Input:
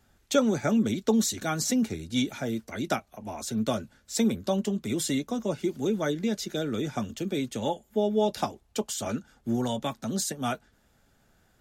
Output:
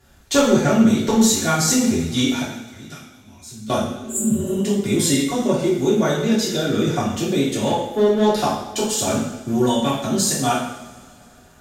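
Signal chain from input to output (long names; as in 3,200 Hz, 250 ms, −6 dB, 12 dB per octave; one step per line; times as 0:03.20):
0:02.42–0:03.70: guitar amp tone stack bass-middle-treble 6-0-2
0:03.90–0:04.54: healed spectral selection 220–6,800 Hz both
in parallel at −2.5 dB: downward compressor, threshold −32 dBFS, peak gain reduction 14 dB
on the sum: asymmetric clip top −18 dBFS
coupled-rooms reverb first 0.75 s, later 3.2 s, from −22 dB, DRR −7.5 dB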